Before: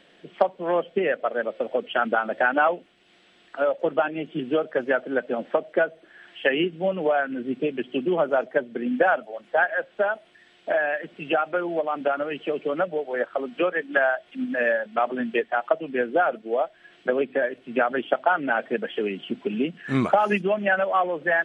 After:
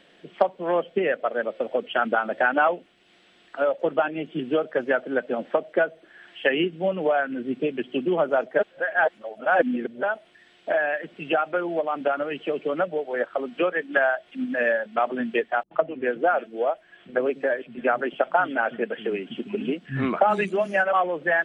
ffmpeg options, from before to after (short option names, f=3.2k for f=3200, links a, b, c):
-filter_complex "[0:a]asettb=1/sr,asplit=3[a][b][c];[a]atrim=end=15.634[d];[b]atrim=start=15.63:end=20.93,asetpts=PTS-STARTPTS,afade=t=in:d=0.004:c=qsin,afade=t=out:st=5.296:d=0.004:c=qsin,acrossover=split=210|3400[e][f][g];[f]adelay=80[h];[g]adelay=420[i];[e][h][i]amix=inputs=3:normalize=0,atrim=end_sample=233730[j];[c]atrim=start=20.926[k];[d][j]acrossfade=d=0.004:c1=hsin:c2=qsin[l];[l][k]acrossfade=d=0.004:c1=qsin:c2=hsin,asplit=3[m][n][o];[m]atrim=end=8.592[p];[n]atrim=start=8.588:end=10.032,asetpts=PTS-STARTPTS,areverse[q];[o]atrim=start=10.028[r];[p][q]acrossfade=d=0.004:c1=hsin:c2=hsin[s];[s][r]acrossfade=d=0.004:c1=hsin:c2=hsin"